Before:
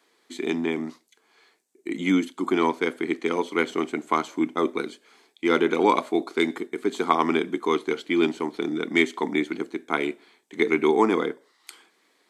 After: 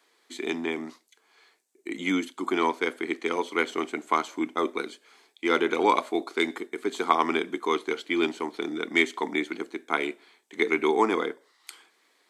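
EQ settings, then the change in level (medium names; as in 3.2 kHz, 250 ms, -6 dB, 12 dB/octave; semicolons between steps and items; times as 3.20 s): high-pass 440 Hz 6 dB/octave; 0.0 dB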